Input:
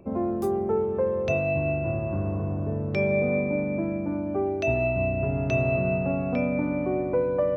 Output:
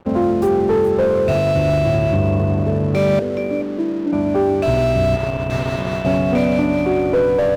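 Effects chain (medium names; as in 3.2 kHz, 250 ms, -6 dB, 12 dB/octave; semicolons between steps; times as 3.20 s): in parallel at 0 dB: peak limiter -24 dBFS, peak gain reduction 10.5 dB; 3.19–4.13 s: on the sum: Butterworth band-pass 360 Hz, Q 1.5; 5.16–6.05 s: power-law waveshaper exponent 2; crossover distortion -42.5 dBFS; on a send: delay 423 ms -14 dB; on the sum: slew-rate limiter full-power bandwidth 52 Hz; trim +7 dB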